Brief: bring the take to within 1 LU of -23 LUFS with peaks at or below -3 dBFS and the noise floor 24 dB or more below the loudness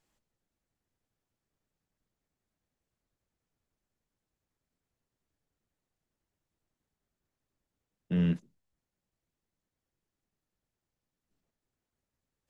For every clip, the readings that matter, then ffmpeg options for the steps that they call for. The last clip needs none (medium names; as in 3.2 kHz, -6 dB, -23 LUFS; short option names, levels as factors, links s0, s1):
loudness -31.0 LUFS; peak level -19.5 dBFS; loudness target -23.0 LUFS
-> -af "volume=2.51"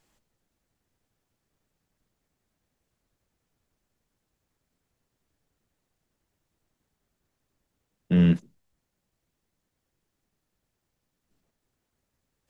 loudness -23.0 LUFS; peak level -11.5 dBFS; noise floor -82 dBFS